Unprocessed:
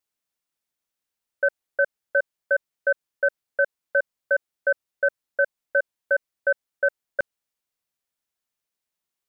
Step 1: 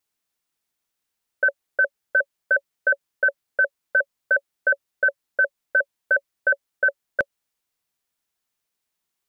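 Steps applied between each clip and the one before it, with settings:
notch filter 560 Hz, Q 12
level +4.5 dB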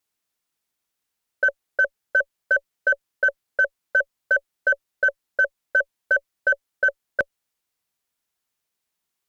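harmonic generator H 6 −39 dB, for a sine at −9 dBFS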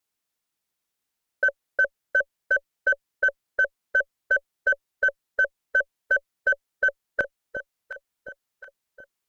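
delay that swaps between a low-pass and a high-pass 359 ms, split 820 Hz, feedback 66%, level −6.5 dB
level −2 dB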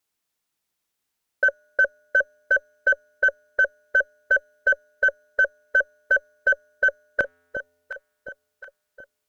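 tuned comb filter 86 Hz, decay 1.5 s, harmonics odd, mix 30%
level +5.5 dB

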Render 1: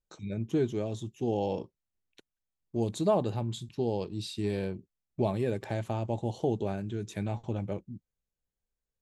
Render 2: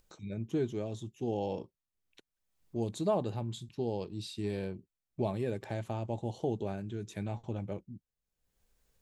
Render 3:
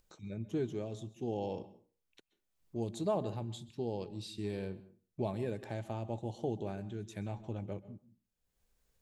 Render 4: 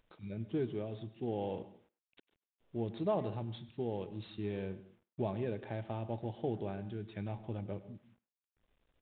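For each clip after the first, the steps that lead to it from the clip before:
upward compression, threshold −50 dBFS; level −4 dB
convolution reverb RT60 0.40 s, pre-delay 122 ms, DRR 17 dB; level −3 dB
variable-slope delta modulation 64 kbit/s; far-end echo of a speakerphone 100 ms, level −18 dB; downsampling to 8,000 Hz

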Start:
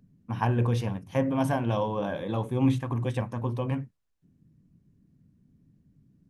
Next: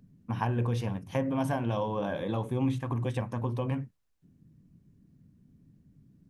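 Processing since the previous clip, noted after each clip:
downward compressor 2 to 1, threshold −32 dBFS, peak gain reduction 8 dB
level +2 dB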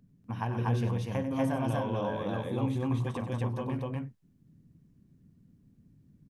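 loudspeakers that aren't time-aligned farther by 32 metres −11 dB, 83 metres 0 dB
level −4 dB

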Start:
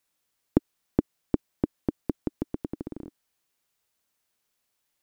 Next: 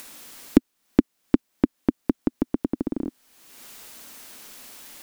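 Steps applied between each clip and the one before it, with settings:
parametric band 100 Hz −14.5 dB 0.56 octaves
upward compression, threshold −23 dBFS
parametric band 250 Hz +6.5 dB 0.58 octaves
level +3 dB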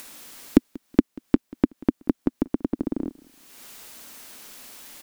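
repeating echo 187 ms, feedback 31%, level −23 dB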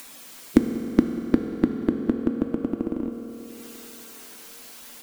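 spectral magnitudes quantised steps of 15 dB
convolution reverb RT60 4.2 s, pre-delay 3 ms, DRR 4 dB

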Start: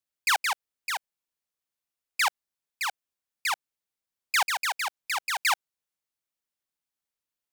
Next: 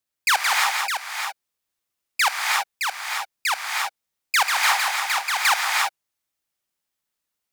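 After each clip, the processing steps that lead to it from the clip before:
convolution reverb, pre-delay 3 ms, DRR 0 dB
level +4.5 dB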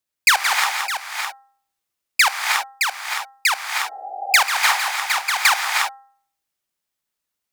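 hum removal 266.6 Hz, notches 7
transient designer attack +8 dB, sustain +1 dB
healed spectral selection 0:03.86–0:04.40, 320–820 Hz both

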